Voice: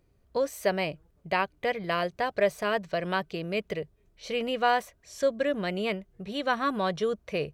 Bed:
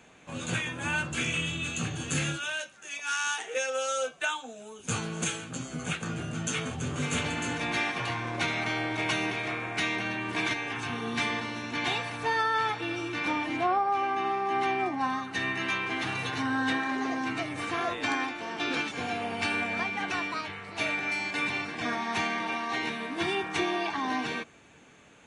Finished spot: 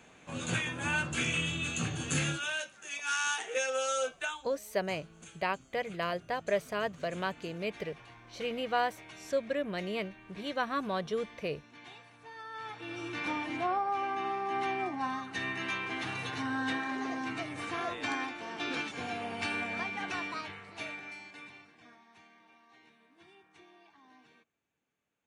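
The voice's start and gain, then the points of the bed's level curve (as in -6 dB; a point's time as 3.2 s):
4.10 s, -5.5 dB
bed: 4.09 s -1.5 dB
4.89 s -21.5 dB
12.31 s -21.5 dB
13.07 s -5 dB
20.48 s -5 dB
22.13 s -30 dB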